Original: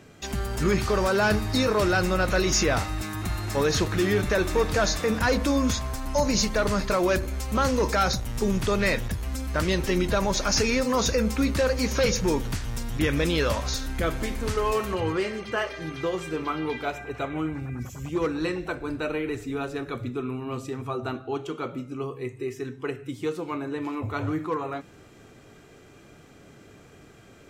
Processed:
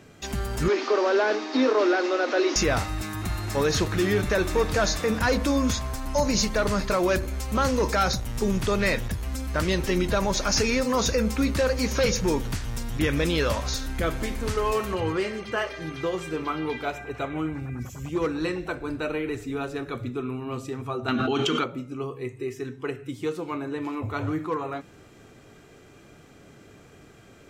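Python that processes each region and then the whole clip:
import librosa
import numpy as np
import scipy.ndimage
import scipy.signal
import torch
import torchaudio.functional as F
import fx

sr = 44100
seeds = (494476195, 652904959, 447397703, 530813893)

y = fx.chain(x, sr, fx.delta_mod(bps=32000, step_db=-35.0),
    fx.steep_highpass(hz=250.0, slope=96),
    fx.low_shelf(hz=360.0, db=7.0), at=(0.68, 2.56))
y = fx.chain(y, sr, fx.band_shelf(hz=2900.0, db=8.5, octaves=2.6),
    fx.small_body(hz=(230.0, 3100.0), ring_ms=85, db=13),
    fx.env_flatten(amount_pct=100), at=(21.08, 21.64))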